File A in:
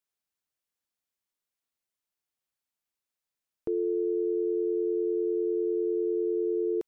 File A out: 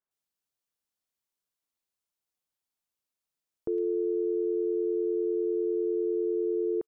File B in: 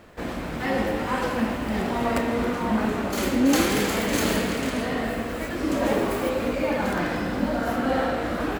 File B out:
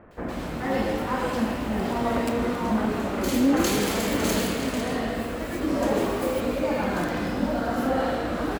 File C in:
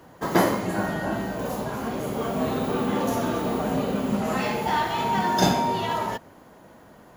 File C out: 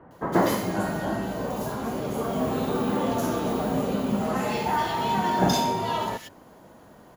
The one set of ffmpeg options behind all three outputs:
ffmpeg -i in.wav -filter_complex "[0:a]acontrast=43,acrossover=split=2000[link_01][link_02];[link_02]adelay=110[link_03];[link_01][link_03]amix=inputs=2:normalize=0,volume=-6dB" out.wav

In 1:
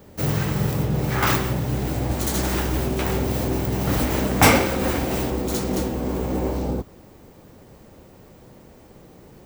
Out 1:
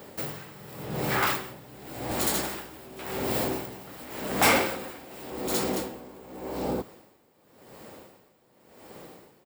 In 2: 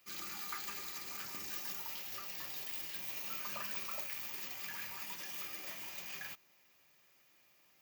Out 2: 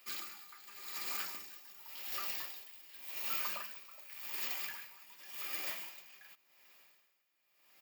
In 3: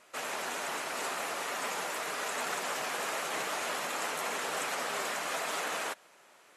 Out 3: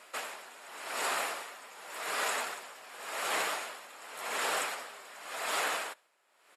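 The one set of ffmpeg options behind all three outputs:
ffmpeg -i in.wav -filter_complex "[0:a]highpass=frequency=470:poles=1,bandreject=frequency=6100:width=7.2,asplit=2[link_01][link_02];[link_02]acompressor=threshold=-36dB:ratio=6,volume=1dB[link_03];[link_01][link_03]amix=inputs=2:normalize=0,asoftclip=type=tanh:threshold=-15dB,asplit=2[link_04][link_05];[link_05]aecho=0:1:73:0.0668[link_06];[link_04][link_06]amix=inputs=2:normalize=0,aeval=exprs='val(0)*pow(10,-19*(0.5-0.5*cos(2*PI*0.89*n/s))/20)':channel_layout=same" out.wav

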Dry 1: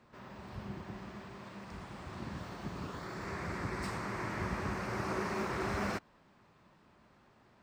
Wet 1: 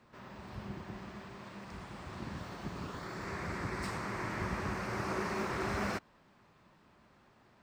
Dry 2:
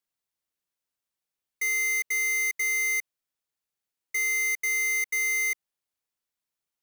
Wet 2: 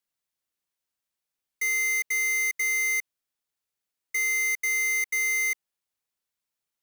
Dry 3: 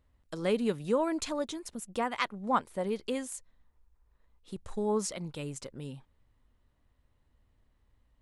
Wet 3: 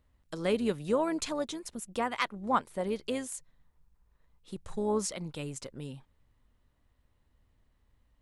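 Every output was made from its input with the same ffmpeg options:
ffmpeg -i in.wav -filter_complex "[0:a]acrossover=split=1200[link_01][link_02];[link_01]tremolo=f=150:d=0.261[link_03];[link_02]volume=20dB,asoftclip=hard,volume=-20dB[link_04];[link_03][link_04]amix=inputs=2:normalize=0,volume=1dB" out.wav

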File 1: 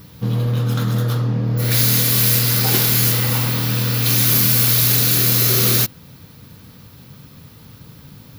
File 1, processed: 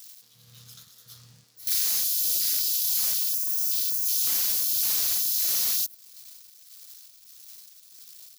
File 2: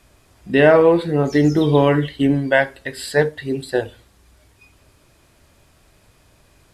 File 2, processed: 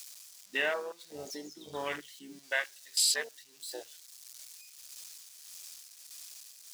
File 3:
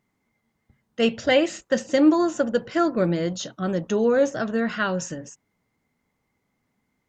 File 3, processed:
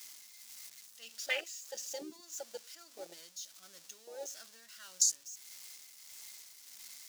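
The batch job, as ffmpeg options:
ffmpeg -i in.wav -af "aeval=exprs='val(0)+0.5*0.0501*sgn(val(0))':channel_layout=same,tremolo=f=1.6:d=0.52,aderivative,asoftclip=type=tanh:threshold=-15dB,afwtdn=0.0178,equalizer=frequency=5500:width_type=o:width=1.5:gain=10,acompressor=threshold=-23dB:ratio=6" out.wav

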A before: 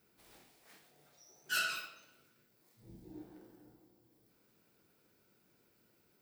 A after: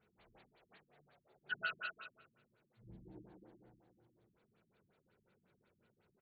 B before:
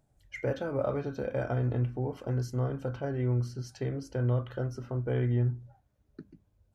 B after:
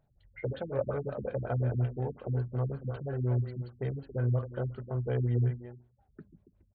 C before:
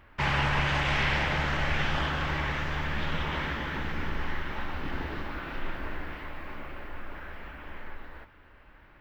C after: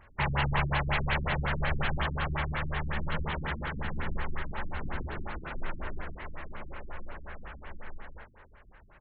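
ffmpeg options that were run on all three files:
ffmpeg -i in.wav -filter_complex "[0:a]equalizer=frequency=290:width=3.7:gain=-10,asplit=2[link_01][link_02];[link_02]adelay=280,highpass=300,lowpass=3400,asoftclip=type=hard:threshold=-23.5dB,volume=-8dB[link_03];[link_01][link_03]amix=inputs=2:normalize=0,afftfilt=real='re*lt(b*sr/1024,300*pow(4700/300,0.5+0.5*sin(2*PI*5.5*pts/sr)))':imag='im*lt(b*sr/1024,300*pow(4700/300,0.5+0.5*sin(2*PI*5.5*pts/sr)))':win_size=1024:overlap=0.75" out.wav

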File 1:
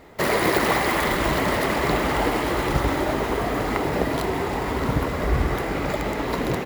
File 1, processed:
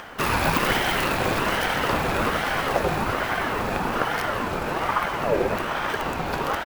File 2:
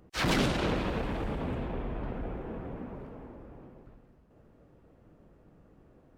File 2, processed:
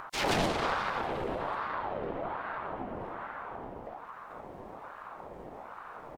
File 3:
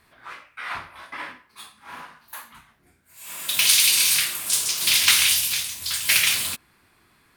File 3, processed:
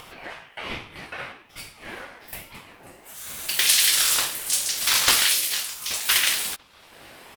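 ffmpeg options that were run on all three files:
ffmpeg -i in.wav -filter_complex "[0:a]asplit=2[link_01][link_02];[link_02]adelay=1516,volume=-25dB,highshelf=frequency=4000:gain=-34.1[link_03];[link_01][link_03]amix=inputs=2:normalize=0,acompressor=mode=upward:threshold=-30dB:ratio=2.5,aeval=exprs='val(0)*sin(2*PI*790*n/s+790*0.45/1.2*sin(2*PI*1.2*n/s))':channel_layout=same,volume=1.5dB" out.wav

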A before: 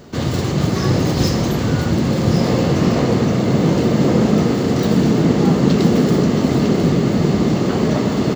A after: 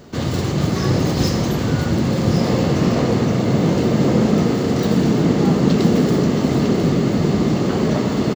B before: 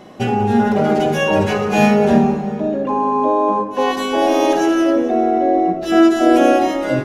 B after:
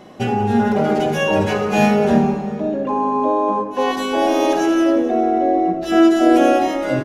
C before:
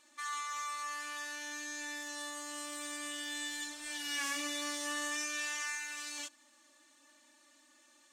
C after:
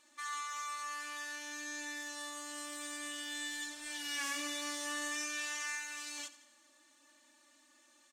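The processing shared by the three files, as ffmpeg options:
ffmpeg -i in.wav -af "aecho=1:1:88|176|264|352|440:0.158|0.0856|0.0462|0.025|0.0135,volume=-1.5dB" out.wav

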